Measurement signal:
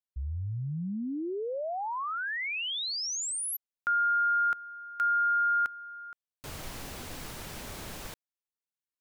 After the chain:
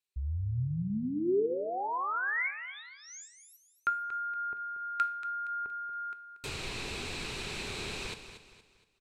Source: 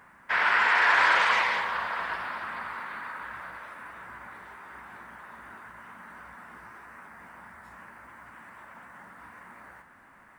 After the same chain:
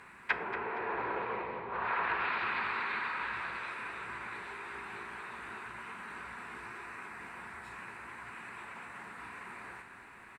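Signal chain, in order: graphic EQ with 31 bands 400 Hz +8 dB, 630 Hz -5 dB, 2.5 kHz +12 dB, 4 kHz +10 dB, 8 kHz +7 dB; low-pass that closes with the level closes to 470 Hz, closed at -22.5 dBFS; feedback delay 234 ms, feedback 38%, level -11 dB; two-slope reverb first 0.45 s, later 1.6 s, from -26 dB, DRR 11.5 dB

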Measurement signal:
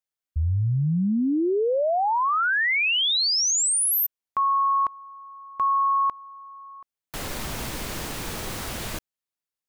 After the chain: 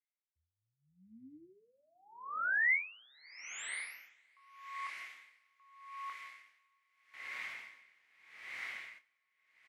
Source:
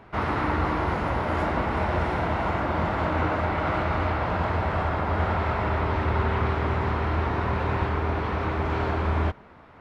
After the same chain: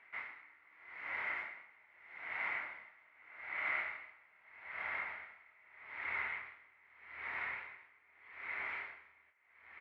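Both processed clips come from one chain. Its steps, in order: band-pass filter 2.1 kHz, Q 8.6; doubling 27 ms -7.5 dB; on a send: echo that smears into a reverb 609 ms, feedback 76%, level -15.5 dB; on the sum: logarithmic tremolo 0.81 Hz, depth 28 dB; trim +4.5 dB

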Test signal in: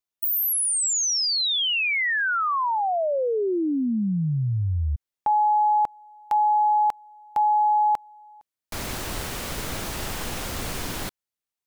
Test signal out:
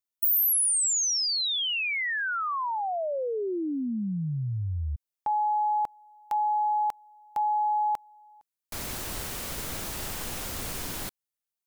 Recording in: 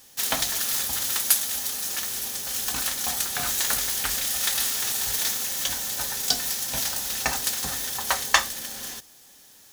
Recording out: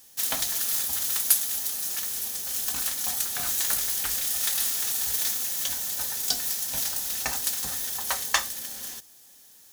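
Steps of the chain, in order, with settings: treble shelf 6.7 kHz +7.5 dB; trim -6 dB

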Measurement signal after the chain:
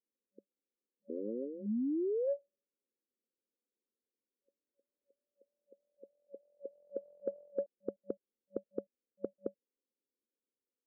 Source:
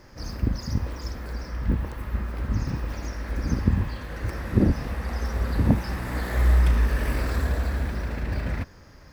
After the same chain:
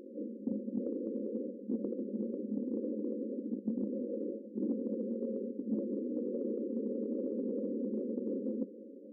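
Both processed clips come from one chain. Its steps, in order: rattle on loud lows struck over -26 dBFS, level -12 dBFS; FFT band-pass 200–570 Hz; reverse; compression 16:1, threshold -40 dBFS; reverse; trim +8 dB

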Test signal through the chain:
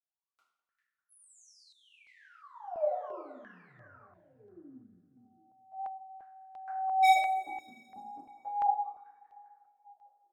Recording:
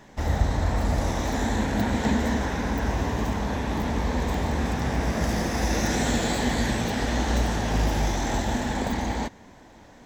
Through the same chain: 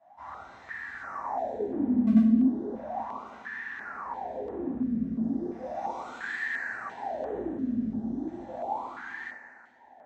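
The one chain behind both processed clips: high-pass 41 Hz 6 dB/octave; echo whose repeats swap between lows and highs 199 ms, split 1.3 kHz, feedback 68%, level -12 dB; wah-wah 0.35 Hz 220–1800 Hz, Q 14; wavefolder -24 dBFS; two-slope reverb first 0.58 s, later 2.4 s, from -17 dB, DRR -9.5 dB; step-sequenced notch 2.9 Hz 420–4800 Hz

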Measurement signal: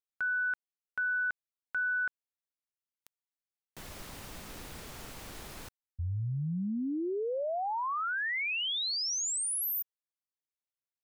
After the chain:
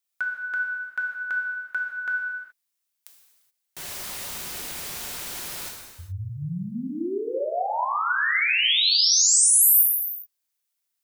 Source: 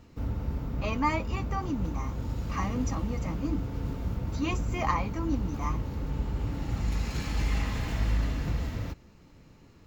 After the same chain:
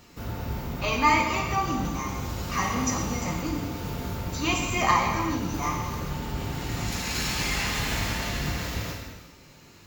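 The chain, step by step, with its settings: tilt EQ +2.5 dB/octave; gated-style reverb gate 450 ms falling, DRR -0.5 dB; trim +4.5 dB

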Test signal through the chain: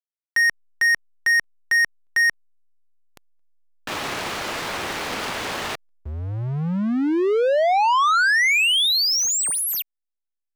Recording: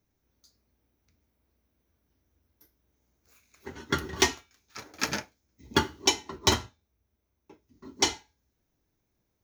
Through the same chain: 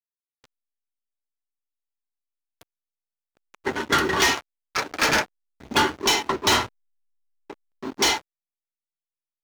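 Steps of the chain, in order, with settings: hysteresis with a dead band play -43.5 dBFS; overdrive pedal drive 33 dB, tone 4.7 kHz, clips at -7 dBFS; trim -3 dB

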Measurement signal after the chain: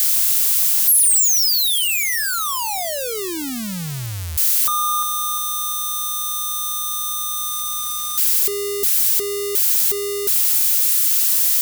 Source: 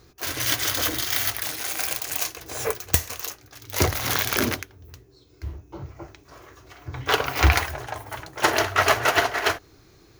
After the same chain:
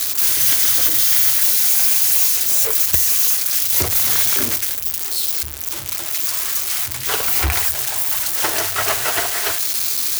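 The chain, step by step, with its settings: zero-crossing glitches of -7.5 dBFS; hum 60 Hz, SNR 34 dB; trim -3.5 dB

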